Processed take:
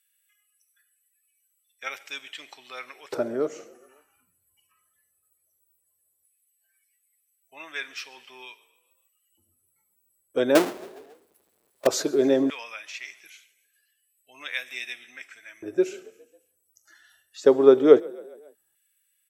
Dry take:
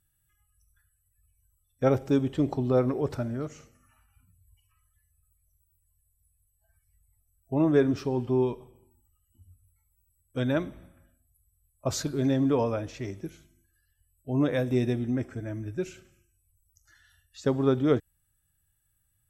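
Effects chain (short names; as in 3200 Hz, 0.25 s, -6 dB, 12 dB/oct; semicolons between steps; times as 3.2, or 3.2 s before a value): 10.55–11.87 half-waves squared off; frequency-shifting echo 0.137 s, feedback 58%, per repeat +35 Hz, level -24 dB; LFO high-pass square 0.16 Hz 410–2300 Hz; gain +4.5 dB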